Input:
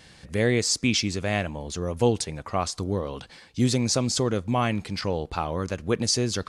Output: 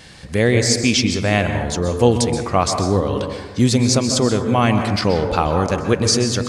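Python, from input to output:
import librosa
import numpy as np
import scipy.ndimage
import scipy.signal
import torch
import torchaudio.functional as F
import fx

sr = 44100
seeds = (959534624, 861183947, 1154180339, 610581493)

p1 = fx.rider(x, sr, range_db=4, speed_s=0.5)
p2 = x + (p1 * librosa.db_to_amplitude(2.5))
y = fx.rev_plate(p2, sr, seeds[0], rt60_s=1.2, hf_ratio=0.35, predelay_ms=115, drr_db=5.5)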